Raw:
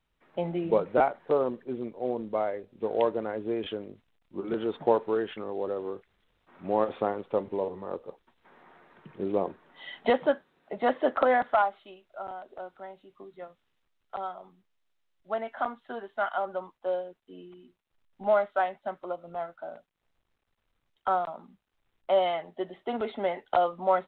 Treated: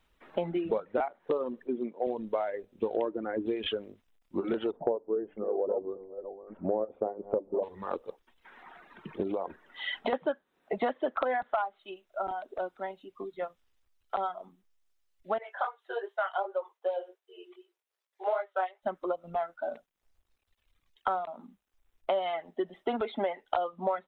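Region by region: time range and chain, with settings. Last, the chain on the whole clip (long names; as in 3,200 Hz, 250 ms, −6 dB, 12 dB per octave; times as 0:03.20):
0:01.67–0:02.07: high-pass filter 140 Hz 24 dB per octave + high-shelf EQ 3,200 Hz −9 dB
0:02.96–0:03.46: low-pass filter 1,700 Hz 6 dB per octave + parametric band 310 Hz +8 dB 0.61 octaves
0:04.71–0:07.63: delay that plays each chunk backwards 621 ms, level −12 dB + low-pass with resonance 580 Hz, resonance Q 1.6 + mains-hum notches 50/100/150/200/250/300 Hz
0:09.22–0:10.13: downward compressor 5 to 1, threshold −31 dBFS + floating-point word with a short mantissa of 8 bits
0:15.38–0:18.83: chorus effect 2.6 Hz, delay 17.5 ms, depth 4.2 ms + linear-phase brick-wall high-pass 350 Hz
whole clip: reverb reduction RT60 2 s; parametric band 130 Hz −12.5 dB 0.46 octaves; downward compressor 6 to 1, threshold −36 dBFS; level +8.5 dB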